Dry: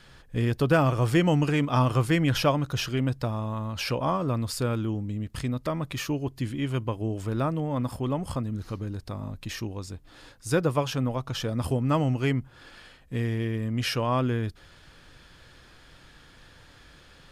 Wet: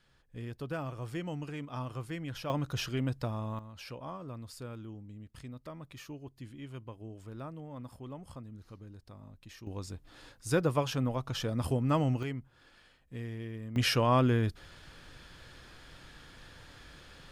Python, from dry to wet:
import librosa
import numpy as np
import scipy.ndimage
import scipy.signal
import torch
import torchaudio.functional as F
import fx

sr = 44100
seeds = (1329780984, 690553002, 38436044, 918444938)

y = fx.gain(x, sr, db=fx.steps((0.0, -16.0), (2.5, -6.0), (3.59, -16.0), (9.67, -4.0), (12.23, -12.0), (13.76, 0.0)))